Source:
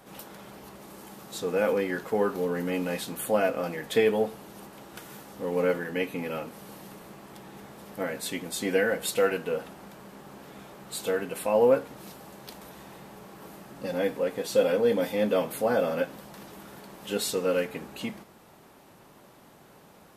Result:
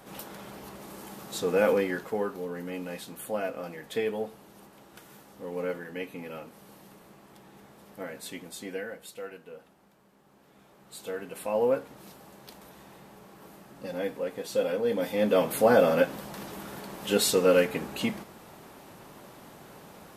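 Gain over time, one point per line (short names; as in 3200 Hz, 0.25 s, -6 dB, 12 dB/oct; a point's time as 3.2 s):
1.73 s +2 dB
2.38 s -7 dB
8.43 s -7 dB
9.14 s -16 dB
10.17 s -16 dB
11.49 s -4.5 dB
14.84 s -4.5 dB
15.6 s +5 dB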